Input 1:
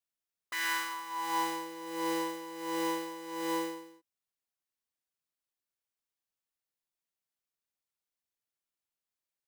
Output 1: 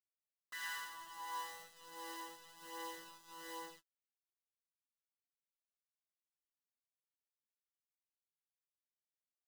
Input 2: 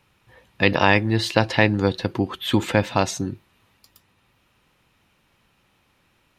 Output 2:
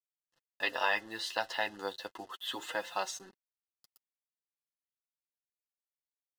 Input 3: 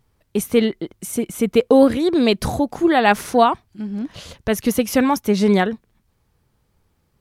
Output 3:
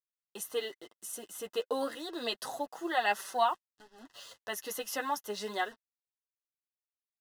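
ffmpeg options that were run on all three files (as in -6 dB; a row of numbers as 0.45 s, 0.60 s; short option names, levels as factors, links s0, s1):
-af "highpass=700,acrusher=bits=6:mix=0:aa=0.5,flanger=delay=5.2:depth=5.4:regen=-9:speed=0.31:shape=sinusoidal,asuperstop=centerf=2300:order=12:qfactor=5.4,volume=0.422"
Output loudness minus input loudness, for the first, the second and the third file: -13.0 LU, -14.5 LU, -16.5 LU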